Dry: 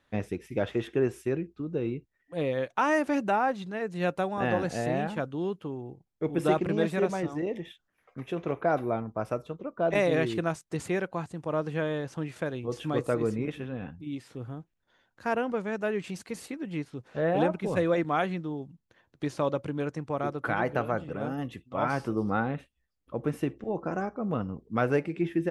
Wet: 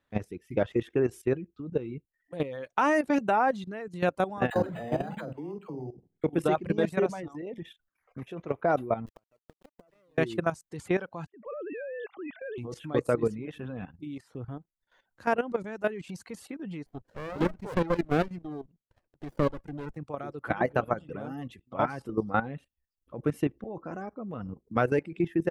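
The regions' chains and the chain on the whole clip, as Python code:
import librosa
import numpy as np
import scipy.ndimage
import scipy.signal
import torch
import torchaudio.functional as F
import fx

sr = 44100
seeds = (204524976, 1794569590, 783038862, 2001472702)

y = fx.chain(x, sr, fx.dispersion(late='lows', ms=60.0, hz=630.0),
    fx.room_flutter(wall_m=8.0, rt60_s=0.36),
    fx.resample_linear(factor=8), at=(4.5, 6.24))
y = fx.chain(y, sr, fx.tube_stage(drive_db=23.0, bias=0.6),
    fx.sample_gate(floor_db=-38.0),
    fx.gate_flip(shuts_db=-30.0, range_db=-28), at=(9.06, 10.18))
y = fx.chain(y, sr, fx.sine_speech(),
    fx.transient(attack_db=-11, sustain_db=5), at=(11.26, 12.58))
y = fx.chain(y, sr, fx.highpass(hz=200.0, slope=6),
    fx.running_max(window=33), at=(16.86, 19.97))
y = fx.dereverb_blind(y, sr, rt60_s=0.66)
y = fx.peak_eq(y, sr, hz=4900.0, db=-2.5, octaves=2.4)
y = fx.level_steps(y, sr, step_db=14)
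y = y * 10.0 ** (5.0 / 20.0)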